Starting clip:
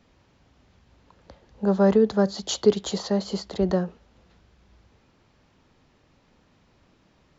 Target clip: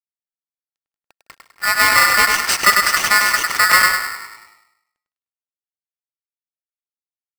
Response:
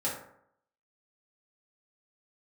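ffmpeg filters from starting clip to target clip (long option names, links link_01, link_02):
-filter_complex "[0:a]asoftclip=type=tanh:threshold=-19.5dB,afreqshift=-44,acrusher=bits=6:mix=0:aa=0.5,equalizer=frequency=66:width_type=o:width=1.7:gain=-9.5,asplit=2[link_01][link_02];[link_02]asplit=4[link_03][link_04][link_05][link_06];[link_03]adelay=158,afreqshift=53,volume=-16.5dB[link_07];[link_04]adelay=316,afreqshift=106,volume=-23.6dB[link_08];[link_05]adelay=474,afreqshift=159,volume=-30.8dB[link_09];[link_06]adelay=632,afreqshift=212,volume=-37.9dB[link_10];[link_07][link_08][link_09][link_10]amix=inputs=4:normalize=0[link_11];[link_01][link_11]amix=inputs=2:normalize=0,dynaudnorm=framelen=270:gausssize=13:maxgain=12dB,equalizer=frequency=230:width_type=o:width=0.57:gain=7.5,asplit=2[link_12][link_13];[link_13]adelay=101,lowpass=frequency=1900:poles=1,volume=-3dB,asplit=2[link_14][link_15];[link_15]adelay=101,lowpass=frequency=1900:poles=1,volume=0.45,asplit=2[link_16][link_17];[link_17]adelay=101,lowpass=frequency=1900:poles=1,volume=0.45,asplit=2[link_18][link_19];[link_19]adelay=101,lowpass=frequency=1900:poles=1,volume=0.45,asplit=2[link_20][link_21];[link_21]adelay=101,lowpass=frequency=1900:poles=1,volume=0.45,asplit=2[link_22][link_23];[link_23]adelay=101,lowpass=frequency=1900:poles=1,volume=0.45[link_24];[link_14][link_16][link_18][link_20][link_22][link_24]amix=inputs=6:normalize=0[link_25];[link_12][link_25]amix=inputs=2:normalize=0,aeval=exprs='val(0)*sgn(sin(2*PI*1600*n/s))':channel_layout=same,volume=1dB"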